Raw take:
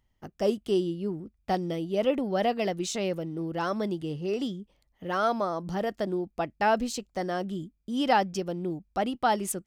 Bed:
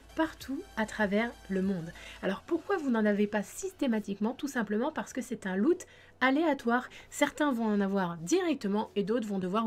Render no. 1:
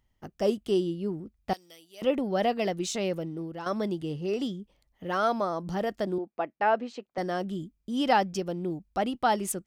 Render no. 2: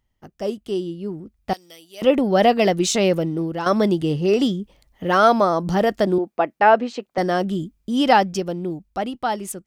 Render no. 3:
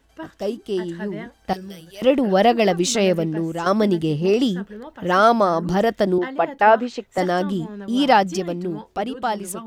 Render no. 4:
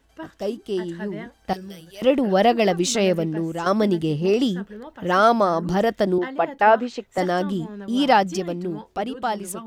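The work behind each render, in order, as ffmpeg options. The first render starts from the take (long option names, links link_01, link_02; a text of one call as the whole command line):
ffmpeg -i in.wav -filter_complex "[0:a]asettb=1/sr,asplit=3[link_01][link_02][link_03];[link_01]atrim=end=1.534[link_04];[link_02]atrim=start=1.53:end=2.02,asetpts=PTS-STARTPTS,afade=type=in:duration=0.004:curve=qsin,afade=type=out:start_time=0.486:duration=0.004:curve=qsin,aderivative[link_05];[link_03]atrim=start=2.016[link_06];[link_04][link_05]acrossfade=duration=0.004:curve1=hsin:curve2=qsin[link_07];[link_07][link_06]acrossfade=duration=0.004:curve1=qsin:curve2=hsin,asettb=1/sr,asplit=3[link_08][link_09][link_10];[link_08]atrim=end=6.184[link_11];[link_09]atrim=start=6.18:end=7.18,asetpts=PTS-STARTPTS,afade=type=in:duration=0.004:curve=qsin,afade=type=out:start_time=0.996:duration=0.004:curve=qsin,highpass=320,lowpass=2300[link_12];[link_10]atrim=start=7.176[link_13];[link_11][link_12]acrossfade=duration=0.004:curve1=hsin:curve2=qsin[link_14];[link_14][link_13]acrossfade=duration=0.004:curve1=qsin:curve2=hsin,asplit=2[link_15][link_16];[link_15]atrim=end=3.66,asetpts=PTS-STARTPTS,afade=type=out:start_time=3.25:duration=0.41:silence=0.298538[link_17];[link_16]atrim=start=3.66,asetpts=PTS-STARTPTS,afade=type=in:duration=0.004:curve=hsin:silence=0.298538[link_18];[link_17][link_18]concat=n=2:v=0:a=1" out.wav
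ffmpeg -i in.wav -af "dynaudnorm=framelen=320:gausssize=11:maxgain=14dB" out.wav
ffmpeg -i in.wav -i bed.wav -filter_complex "[1:a]volume=-6dB[link_01];[0:a][link_01]amix=inputs=2:normalize=0" out.wav
ffmpeg -i in.wav -af "volume=-1.5dB" out.wav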